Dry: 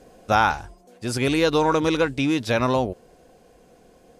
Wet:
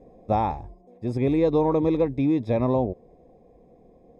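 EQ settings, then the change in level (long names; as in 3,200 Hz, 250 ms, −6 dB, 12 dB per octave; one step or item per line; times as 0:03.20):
moving average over 30 samples
+1.0 dB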